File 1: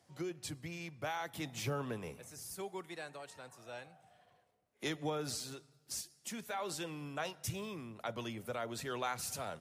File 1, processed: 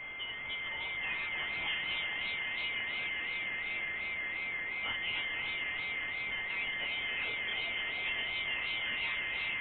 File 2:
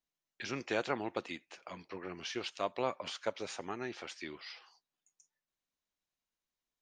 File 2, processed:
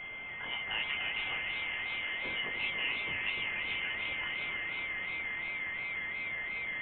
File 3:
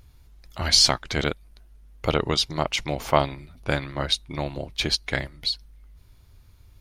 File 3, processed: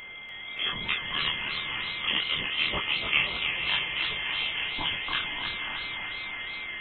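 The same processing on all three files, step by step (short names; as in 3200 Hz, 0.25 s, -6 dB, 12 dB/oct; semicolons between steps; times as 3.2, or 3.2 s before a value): gate with hold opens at -44 dBFS; in parallel at -1 dB: compressor, threshold -33 dBFS; on the sum: requantised 6-bit, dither triangular; chorus voices 4, 0.46 Hz, delay 23 ms, depth 3.2 ms; whine 1200 Hz -37 dBFS; on a send: diffused feedback echo 0.535 s, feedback 47%, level -6 dB; on the sum: inverted band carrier 3300 Hz; warbling echo 0.296 s, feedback 63%, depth 189 cents, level -6.5 dB; gain -4 dB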